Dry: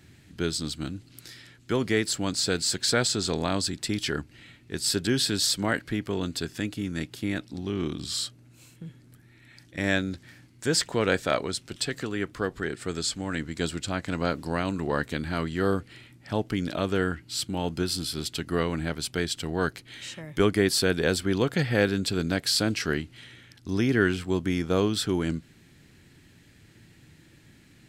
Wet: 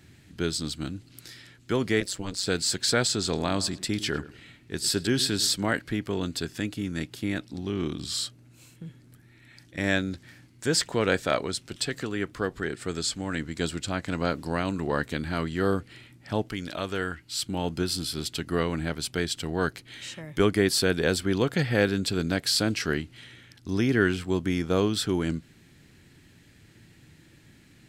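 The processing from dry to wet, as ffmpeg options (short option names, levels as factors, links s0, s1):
-filter_complex "[0:a]asettb=1/sr,asplit=3[s0][s1][s2];[s0]atrim=end=2.004[s3];[s1]atrim=start=2:end=2.47,asetpts=PTS-STARTPTS,afade=t=in:d=0.004:c=qsin,afade=t=out:st=0.466:d=0.004:c=qsin,tremolo=f=190:d=0.974[s4];[s2]atrim=start=2.466[s5];[s3][s4]acrossfade=d=0.004:c1=hsin:c2=qsin[s6];[s6][s5]acrossfade=d=0.004:c1=qsin:c2=hsin,asettb=1/sr,asplit=3[s7][s8][s9];[s7]atrim=end=3.224[s10];[s8]atrim=start=3.22:end=5.56,asetpts=PTS-STARTPTS,afade=t=in:d=0.004:c=qsin,afade=t=out:st=2.336:d=0.004:c=qsin,asplit=2[s11][s12];[s12]adelay=103,lowpass=f=2000:p=1,volume=0.168,asplit=2[s13][s14];[s14]adelay=103,lowpass=f=2000:p=1,volume=0.3,asplit=2[s15][s16];[s16]adelay=103,lowpass=f=2000:p=1,volume=0.3[s17];[s11][s13][s15][s17]amix=inputs=4:normalize=0,atrim=end_sample=103194[s18];[s9]atrim=start=5.556[s19];[s10][s18]acrossfade=d=0.004:c1=hsin:c2=qsin[s20];[s20][s19]acrossfade=d=0.004:c1=qsin:c2=hsin,asettb=1/sr,asplit=3[s21][s22][s23];[s21]atrim=end=16.494[s24];[s22]atrim=start=16.49:end=17.46,asetpts=PTS-STARTPTS,afade=t=in:d=0.004:c=qsin,afade=t=out:st=0.966:d=0.004:c=qsin,equalizer=f=190:w=0.33:g=-7[s25];[s23]atrim=start=17.456[s26];[s24][s25]acrossfade=d=0.004:c1=hsin:c2=qsin[s27];[s27][s26]acrossfade=d=0.004:c1=qsin:c2=hsin"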